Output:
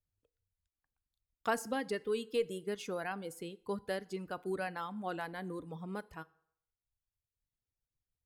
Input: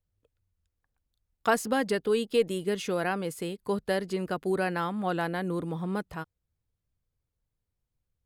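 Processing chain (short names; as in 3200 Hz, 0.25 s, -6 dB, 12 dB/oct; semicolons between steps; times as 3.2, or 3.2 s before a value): reverb removal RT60 1.2 s; FDN reverb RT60 0.68 s, low-frequency decay 0.8×, high-frequency decay 0.75×, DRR 17 dB; gain -8 dB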